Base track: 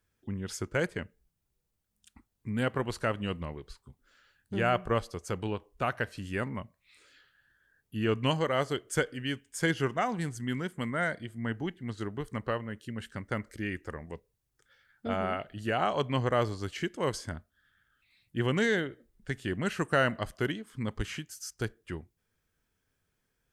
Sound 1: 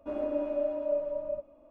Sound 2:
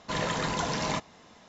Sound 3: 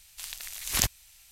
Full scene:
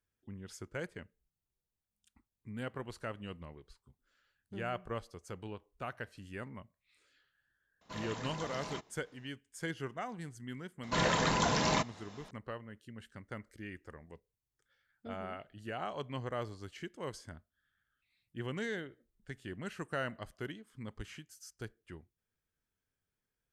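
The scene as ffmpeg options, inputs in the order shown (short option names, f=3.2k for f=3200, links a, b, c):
-filter_complex "[2:a]asplit=2[a][b];[0:a]volume=-11dB[c];[a]atrim=end=1.48,asetpts=PTS-STARTPTS,volume=-13.5dB,afade=t=in:d=0.004:c=hsin,afade=t=out:st=1.476:d=0.004:c=hsin,adelay=7810[d];[b]atrim=end=1.48,asetpts=PTS-STARTPTS,afade=t=in:d=0.004:c=hsin,afade=t=out:st=1.476:d=0.004:c=hsin,adelay=10830[e];[c][d][e]amix=inputs=3:normalize=0"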